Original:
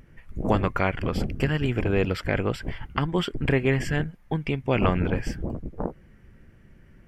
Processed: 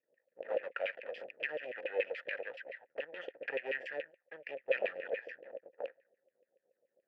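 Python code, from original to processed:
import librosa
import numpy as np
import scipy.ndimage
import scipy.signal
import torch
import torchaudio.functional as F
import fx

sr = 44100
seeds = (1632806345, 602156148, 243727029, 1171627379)

y = scipy.signal.sosfilt(scipy.signal.butter(2, 45.0, 'highpass', fs=sr, output='sos'), x)
y = fx.low_shelf(y, sr, hz=89.0, db=-11.0)
y = fx.env_lowpass(y, sr, base_hz=360.0, full_db=-23.5)
y = fx.high_shelf(y, sr, hz=3200.0, db=7.5)
y = np.maximum(y, 0.0)
y = fx.filter_lfo_bandpass(y, sr, shape='saw_down', hz=7.0, low_hz=510.0, high_hz=2800.0, q=3.6)
y = fx.vowel_filter(y, sr, vowel='e')
y = F.gain(torch.from_numpy(y), 13.5).numpy()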